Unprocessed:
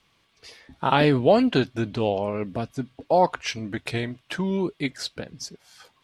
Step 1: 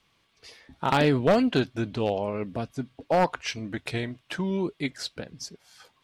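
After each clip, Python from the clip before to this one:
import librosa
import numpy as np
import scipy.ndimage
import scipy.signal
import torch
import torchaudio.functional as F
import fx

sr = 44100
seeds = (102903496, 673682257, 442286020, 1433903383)

y = np.minimum(x, 2.0 * 10.0 ** (-14.0 / 20.0) - x)
y = F.gain(torch.from_numpy(y), -2.5).numpy()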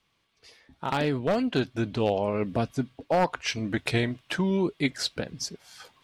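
y = fx.rider(x, sr, range_db=5, speed_s=0.5)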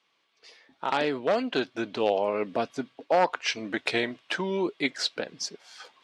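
y = fx.bandpass_edges(x, sr, low_hz=350.0, high_hz=6400.0)
y = F.gain(torch.from_numpy(y), 2.0).numpy()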